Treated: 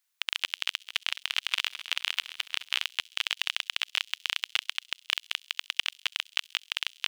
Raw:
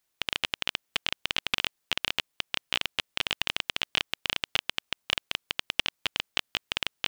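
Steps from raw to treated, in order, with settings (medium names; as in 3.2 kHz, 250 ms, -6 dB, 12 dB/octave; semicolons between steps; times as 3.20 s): high-pass 1.2 kHz 12 dB/octave; feedback echo behind a high-pass 66 ms, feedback 78%, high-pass 5.3 kHz, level -17 dB; 0.67–2.92 s: bit-crushed delay 213 ms, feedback 55%, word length 7-bit, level -12.5 dB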